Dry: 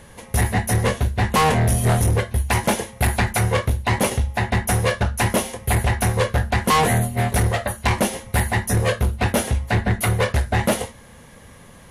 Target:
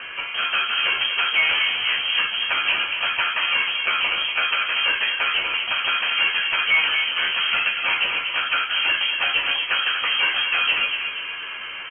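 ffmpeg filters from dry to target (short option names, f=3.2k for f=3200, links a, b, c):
-filter_complex "[0:a]highpass=f=120:p=1,bandreject=f=720:w=12,asplit=2[a][b];[b]acompressor=threshold=-30dB:ratio=6,volume=0.5dB[c];[a][c]amix=inputs=2:normalize=0,alimiter=limit=-13dB:level=0:latency=1,asplit=2[d][e];[e]highpass=f=720:p=1,volume=19dB,asoftclip=type=tanh:threshold=-13dB[f];[d][f]amix=inputs=2:normalize=0,lowpass=f=1.8k:p=1,volume=-6dB,asplit=2[g][h];[h]adelay=12,volume=-5dB[i];[g][i]amix=inputs=2:normalize=0,asplit=2[j][k];[k]adelay=239,lowpass=f=1.8k:p=1,volume=-5dB,asplit=2[l][m];[m]adelay=239,lowpass=f=1.8k:p=1,volume=0.53,asplit=2[n][o];[o]adelay=239,lowpass=f=1.8k:p=1,volume=0.53,asplit=2[p][q];[q]adelay=239,lowpass=f=1.8k:p=1,volume=0.53,asplit=2[r][s];[s]adelay=239,lowpass=f=1.8k:p=1,volume=0.53,asplit=2[t][u];[u]adelay=239,lowpass=f=1.8k:p=1,volume=0.53,asplit=2[v][w];[w]adelay=239,lowpass=f=1.8k:p=1,volume=0.53[x];[l][n][p][r][t][v][x]amix=inputs=7:normalize=0[y];[j][y]amix=inputs=2:normalize=0,lowpass=f=2.8k:t=q:w=0.5098,lowpass=f=2.8k:t=q:w=0.6013,lowpass=f=2.8k:t=q:w=0.9,lowpass=f=2.8k:t=q:w=2.563,afreqshift=-3300,volume=-1.5dB"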